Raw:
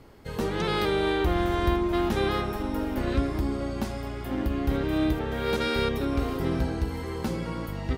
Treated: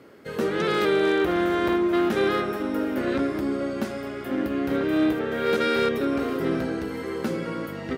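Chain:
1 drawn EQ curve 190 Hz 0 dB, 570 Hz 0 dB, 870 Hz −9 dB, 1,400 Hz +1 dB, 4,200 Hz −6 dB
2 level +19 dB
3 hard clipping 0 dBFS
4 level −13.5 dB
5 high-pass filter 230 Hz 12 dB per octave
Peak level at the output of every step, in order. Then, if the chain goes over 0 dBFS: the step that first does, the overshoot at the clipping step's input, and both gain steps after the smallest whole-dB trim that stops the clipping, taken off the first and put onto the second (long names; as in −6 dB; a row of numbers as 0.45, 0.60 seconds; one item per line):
−13.0, +6.0, 0.0, −13.5, −10.5 dBFS
step 2, 6.0 dB
step 2 +13 dB, step 4 −7.5 dB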